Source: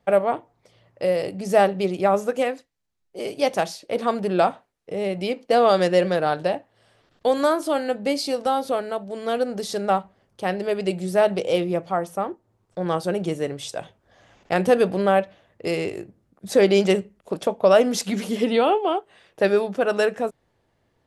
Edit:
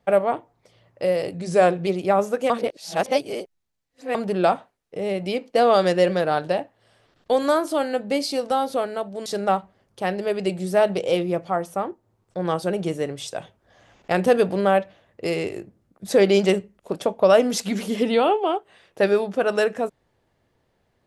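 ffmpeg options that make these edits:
-filter_complex "[0:a]asplit=6[a][b][c][d][e][f];[a]atrim=end=1.334[g];[b]atrim=start=1.33:end=1.82,asetpts=PTS-STARTPTS,asetrate=40131,aresample=44100,atrim=end_sample=23746,asetpts=PTS-STARTPTS[h];[c]atrim=start=1.816:end=2.452[i];[d]atrim=start=2.448:end=4.102,asetpts=PTS-STARTPTS,areverse[j];[e]atrim=start=4.098:end=9.212[k];[f]atrim=start=9.668[l];[g][h]acrossfade=d=0.004:c1=hsin:c2=hsin[m];[m][i]acrossfade=d=0.004:c1=hsin:c2=hsin[n];[n][j]acrossfade=d=0.004:c1=hsin:c2=hsin[o];[o][k]acrossfade=d=0.004:c1=hsin:c2=hsin[p];[p][l]acrossfade=d=0.004:c1=hsin:c2=hsin"

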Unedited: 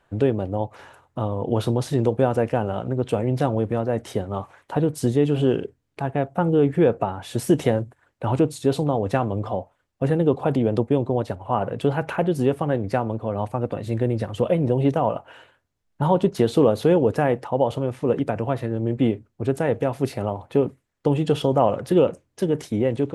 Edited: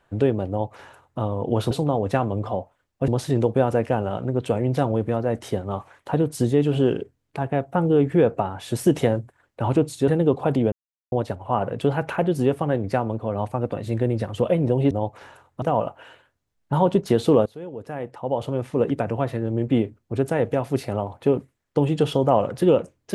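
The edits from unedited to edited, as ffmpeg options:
-filter_complex "[0:a]asplit=9[a][b][c][d][e][f][g][h][i];[a]atrim=end=1.712[j];[b]atrim=start=8.708:end=10.082[k];[c]atrim=start=1.708:end=8.712[l];[d]atrim=start=10.078:end=10.72,asetpts=PTS-STARTPTS,afade=t=out:st=0.638:d=0.004:c=hsin[m];[e]atrim=start=10.72:end=11.12,asetpts=PTS-STARTPTS,volume=0[n];[f]atrim=start=11.12:end=14.912,asetpts=PTS-STARTPTS,afade=t=in:d=0.004:c=hsin[o];[g]atrim=start=0.488:end=1.202[p];[h]atrim=start=14.908:end=16.75,asetpts=PTS-STARTPTS,afade=t=out:st=1.838:d=0.004:c=hsin:silence=0.1[q];[i]atrim=start=16.75,asetpts=PTS-STARTPTS,afade=t=in:d=1.14:c=qua:silence=0.1[r];[j][k]acrossfade=d=0.004:c1=hsin:c2=hsin[s];[s][l]acrossfade=d=0.004:c1=hsin:c2=hsin[t];[m][n][o]concat=n=3:v=0:a=1[u];[t][u]acrossfade=d=0.004:c1=hsin:c2=hsin[v];[v][p]acrossfade=d=0.004:c1=hsin:c2=hsin[w];[q][r]concat=n=2:v=0:a=1[x];[w][x]acrossfade=d=0.004:c1=hsin:c2=hsin"

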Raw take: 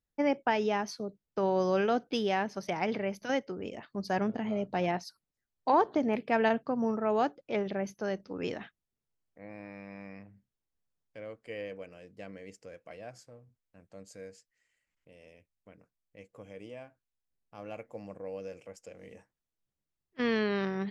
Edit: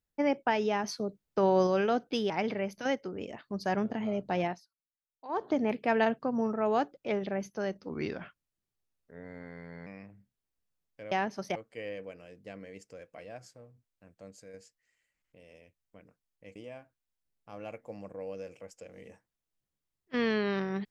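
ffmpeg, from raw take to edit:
-filter_complex "[0:a]asplit=12[a][b][c][d][e][f][g][h][i][j][k][l];[a]atrim=end=0.842[m];[b]atrim=start=0.838:end=1.672,asetpts=PTS-STARTPTS,volume=3.5dB[n];[c]atrim=start=1.668:end=2.302[o];[d]atrim=start=2.738:end=5.08,asetpts=PTS-STARTPTS,afade=t=out:st=2.132:d=0.21:silence=0.1[p];[e]atrim=start=5.08:end=5.72,asetpts=PTS-STARTPTS,volume=-20dB[q];[f]atrim=start=5.72:end=8.344,asetpts=PTS-STARTPTS,afade=t=in:d=0.21:silence=0.1[r];[g]atrim=start=8.34:end=10.03,asetpts=PTS-STARTPTS,asetrate=37926,aresample=44100[s];[h]atrim=start=10.026:end=11.282[t];[i]atrim=start=2.298:end=2.742[u];[j]atrim=start=11.278:end=14.26,asetpts=PTS-STARTPTS,afade=t=out:st=2.712:d=0.27:silence=0.501187[v];[k]atrim=start=14.26:end=16.282,asetpts=PTS-STARTPTS,afade=t=in:d=0.004:c=hsin:silence=0.501187[w];[l]atrim=start=16.608[x];[m][n]acrossfade=d=0.004:c1=hsin:c2=hsin[y];[y][o]acrossfade=d=0.004:c1=hsin:c2=hsin[z];[p][q][r]concat=n=3:v=0:a=1[aa];[z][aa]acrossfade=d=0.004:c1=hsin:c2=hsin[ab];[ab][s]acrossfade=d=0.004:c1=hsin:c2=hsin[ac];[ac][t]acrossfade=d=0.004:c1=hsin:c2=hsin[ad];[ad][u]acrossfade=d=0.004:c1=hsin:c2=hsin[ae];[v][w]concat=n=2:v=0:a=1[af];[ae][af]acrossfade=d=0.004:c1=hsin:c2=hsin[ag];[ag][x]acrossfade=d=0.004:c1=hsin:c2=hsin"

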